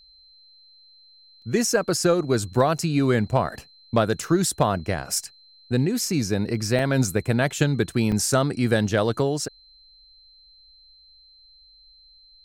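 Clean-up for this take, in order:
clipped peaks rebuilt −8 dBFS
notch filter 4,100 Hz, Q 30
repair the gap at 0:01.42/0:06.79/0:08.12, 1.9 ms

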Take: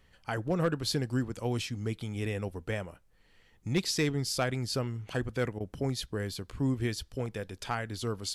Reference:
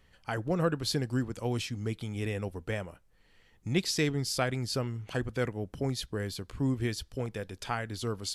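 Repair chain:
clipped peaks rebuilt −20 dBFS
repair the gap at 0:05.59, 13 ms

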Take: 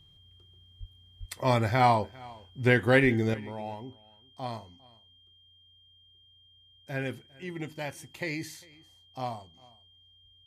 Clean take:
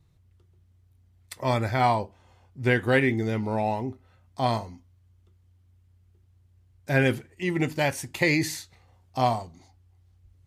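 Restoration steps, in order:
notch filter 3,200 Hz, Q 30
0:00.79–0:00.91: high-pass filter 140 Hz 24 dB per octave
0:01.19–0:01.31: high-pass filter 140 Hz 24 dB per octave
0:03.02–0:03.14: high-pass filter 140 Hz 24 dB per octave
echo removal 401 ms −23.5 dB
level 0 dB, from 0:03.34 +11.5 dB

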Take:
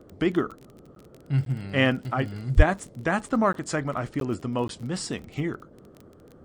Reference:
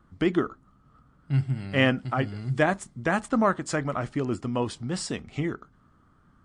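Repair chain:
click removal
high-pass at the plosives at 0:02.56
repair the gap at 0:00.95/0:01.45/0:03.53/0:04.20/0:04.68, 12 ms
noise reduction from a noise print 9 dB

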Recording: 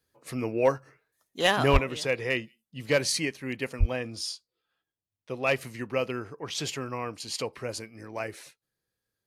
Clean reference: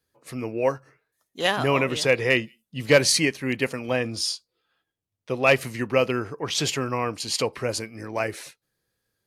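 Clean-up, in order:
clipped peaks rebuilt −11.5 dBFS
high-pass at the plosives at 0:01.72/0:03.79
level 0 dB, from 0:01.77 +7.5 dB

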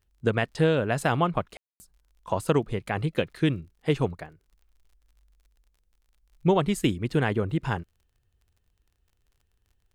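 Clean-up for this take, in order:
click removal
ambience match 0:01.57–0:01.80

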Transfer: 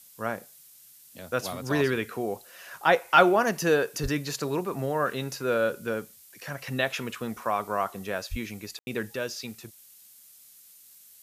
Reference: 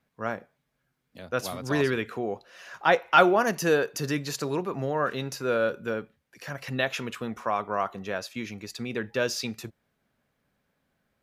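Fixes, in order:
0:04.02–0:04.14: high-pass filter 140 Hz 24 dB per octave
0:08.30–0:08.42: high-pass filter 140 Hz 24 dB per octave
ambience match 0:08.79–0:08.87
noise reduction from a noise print 22 dB
0:09.16: level correction +5.5 dB

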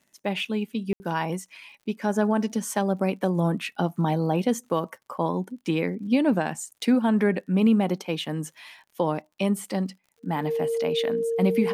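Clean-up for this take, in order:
click removal
notch filter 460 Hz, Q 30
ambience match 0:00.93–0:01.00

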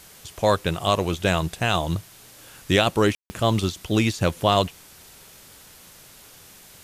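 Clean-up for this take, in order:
ambience match 0:03.15–0:03.30
broadband denoise 19 dB, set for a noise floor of −48 dBFS

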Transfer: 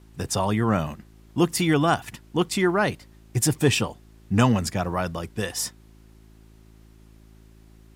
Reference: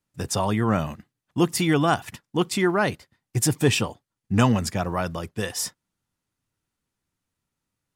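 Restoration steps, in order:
hum removal 54.3 Hz, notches 7
downward expander −43 dBFS, range −21 dB

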